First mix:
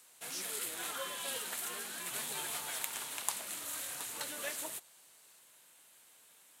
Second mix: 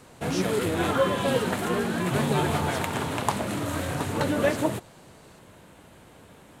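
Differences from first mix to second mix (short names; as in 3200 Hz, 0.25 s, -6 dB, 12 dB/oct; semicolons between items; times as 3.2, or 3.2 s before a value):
speech +4.0 dB; master: remove differentiator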